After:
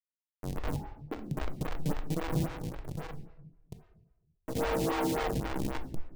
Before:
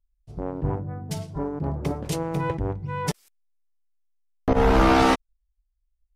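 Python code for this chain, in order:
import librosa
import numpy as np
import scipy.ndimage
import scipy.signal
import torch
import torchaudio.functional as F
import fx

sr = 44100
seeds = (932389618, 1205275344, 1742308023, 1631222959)

p1 = fx.wiener(x, sr, points=15)
p2 = scipy.signal.sosfilt(scipy.signal.butter(2, 40.0, 'highpass', fs=sr, output='sos'), p1)
p3 = fx.high_shelf(p2, sr, hz=2500.0, db=-8.5)
p4 = p3 + 0.57 * np.pad(p3, (int(6.4 * sr / 1000.0), 0))[:len(p3)]
p5 = p4 + fx.echo_split(p4, sr, split_hz=380.0, low_ms=632, high_ms=118, feedback_pct=52, wet_db=-5, dry=0)
p6 = fx.schmitt(p5, sr, flips_db=-21.5)
p7 = fx.ring_mod(p6, sr, carrier_hz=fx.line((0.75, 900.0), (1.35, 140.0)), at=(0.75, 1.35), fade=0.02)
p8 = fx.tube_stage(p7, sr, drive_db=28.0, bias=0.7, at=(2.45, 4.54), fade=0.02)
p9 = fx.room_shoebox(p8, sr, seeds[0], volume_m3=350.0, walls='mixed', distance_m=0.54)
p10 = fx.stagger_phaser(p9, sr, hz=3.7)
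y = p10 * librosa.db_to_amplitude(-5.0)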